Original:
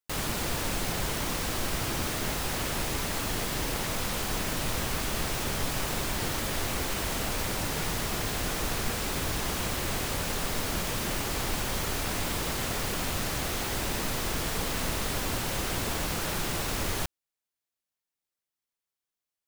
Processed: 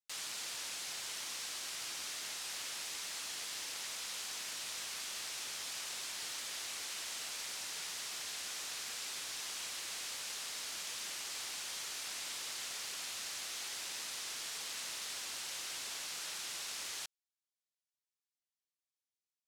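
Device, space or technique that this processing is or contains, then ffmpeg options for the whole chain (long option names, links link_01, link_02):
piezo pickup straight into a mixer: -af "lowpass=6100,aderivative"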